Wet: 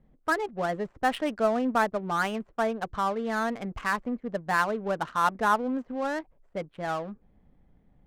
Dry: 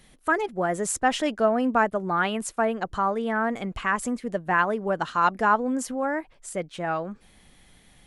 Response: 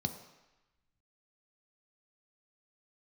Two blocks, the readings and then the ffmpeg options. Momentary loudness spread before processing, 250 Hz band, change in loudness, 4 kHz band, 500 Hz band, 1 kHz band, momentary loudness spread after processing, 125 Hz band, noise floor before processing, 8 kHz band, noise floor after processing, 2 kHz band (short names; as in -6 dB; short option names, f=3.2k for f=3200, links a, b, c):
8 LU, -3.5 dB, -3.0 dB, -3.5 dB, -3.0 dB, -3.0 dB, 8 LU, -3.5 dB, -57 dBFS, -12.0 dB, -64 dBFS, -3.0 dB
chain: -filter_complex "[0:a]acrossover=split=4100[a][b];[b]acompressor=threshold=-52dB:ratio=6[c];[a][c]amix=inputs=2:normalize=0,bandreject=f=360:w=12,adynamicsmooth=sensitivity=6.5:basefreq=590,volume=-3dB"